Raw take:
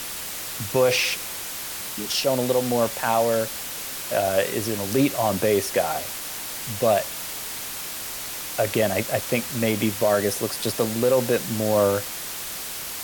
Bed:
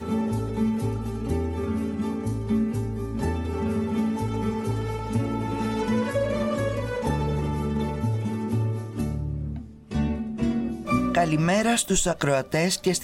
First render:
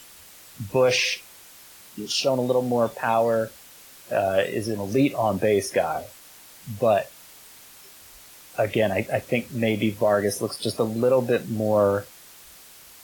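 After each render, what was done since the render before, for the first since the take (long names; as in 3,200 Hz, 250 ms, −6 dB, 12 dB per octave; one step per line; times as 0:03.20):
noise reduction from a noise print 15 dB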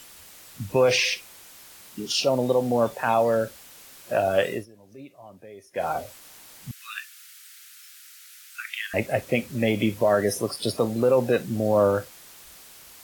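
0:04.52–0:05.87: duck −23.5 dB, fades 0.14 s
0:06.71–0:08.94: Butterworth high-pass 1,300 Hz 72 dB per octave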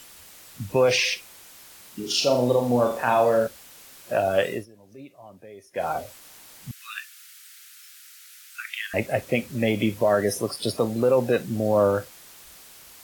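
0:01.99–0:03.47: flutter between parallel walls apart 7 metres, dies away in 0.44 s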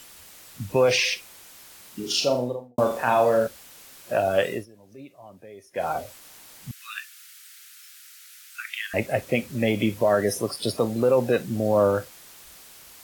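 0:02.14–0:02.78: fade out and dull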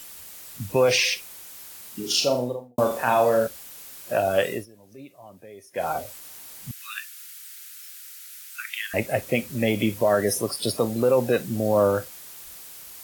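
high-shelf EQ 8,200 Hz +8.5 dB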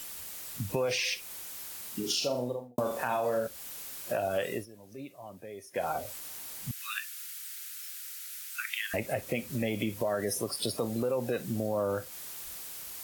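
brickwall limiter −13 dBFS, peak gain reduction 5.5 dB
downward compressor 2.5 to 1, threshold −31 dBFS, peak gain reduction 9.5 dB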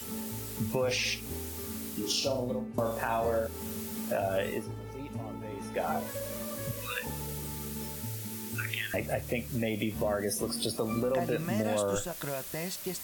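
mix in bed −14 dB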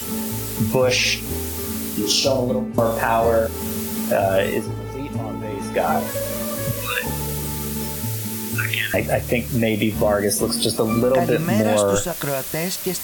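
level +12 dB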